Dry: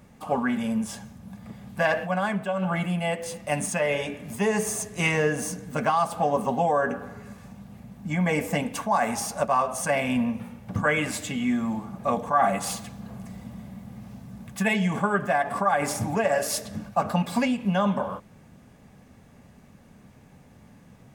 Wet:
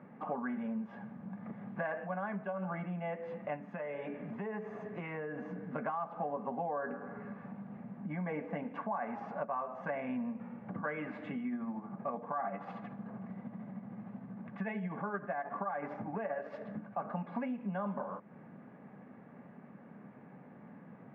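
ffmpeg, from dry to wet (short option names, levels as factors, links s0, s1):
-filter_complex "[0:a]asettb=1/sr,asplit=3[s0][s1][s2];[s0]atrim=end=3.564[s3];[s1]atrim=start=3.56:end=5.64,asetpts=PTS-STARTPTS,afade=t=in:d=0.004:c=qsin,afade=t=out:st=2.076:d=0.004:c=qsin,acompressor=threshold=0.0282:ratio=4:attack=3.2:release=140:knee=1:detection=peak[s4];[s2]atrim=start=5.636[s5];[s3][s4]acrossfade=d=0.004:c1=hsin:c2=qsin[s6];[s6][s5]acrossfade=d=0.004:c1=qsin:c2=hsin,asettb=1/sr,asplit=3[s7][s8][s9];[s7]atrim=end=11.394[s10];[s8]atrim=start=11.39:end=17.03,asetpts=PTS-STARTPTS,afade=t=in:d=0.004:c=qsin,afade=t=out:st=5.636:d=0.004:c=qsin,tremolo=f=13:d=0.42[s11];[s9]atrim=start=17.026[s12];[s10][s11]acrossfade=d=0.004:c1=hsin:c2=qsin[s13];[s13][s12]acrossfade=d=0.004:c1=qsin:c2=hsin,lowpass=f=1900:w=0.5412,lowpass=f=1900:w=1.3066,acompressor=threshold=0.01:ratio=3,highpass=f=160:w=0.5412,highpass=f=160:w=1.3066,volume=1.12"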